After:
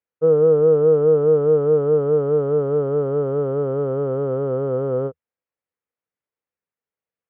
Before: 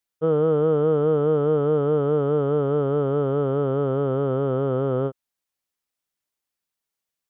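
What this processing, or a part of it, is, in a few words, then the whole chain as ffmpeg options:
bass cabinet: -af "highpass=62,equalizer=f=80:t=q:w=4:g=6,equalizer=f=160:t=q:w=4:g=3,equalizer=f=480:t=q:w=4:g=10,lowpass=f=2400:w=0.5412,lowpass=f=2400:w=1.3066,volume=0.708"

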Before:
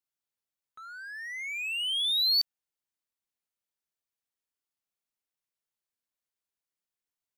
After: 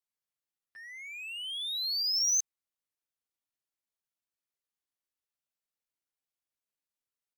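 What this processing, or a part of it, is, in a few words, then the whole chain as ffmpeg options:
chipmunk voice: -af "asetrate=60591,aresample=44100,atempo=0.727827,volume=0.794"

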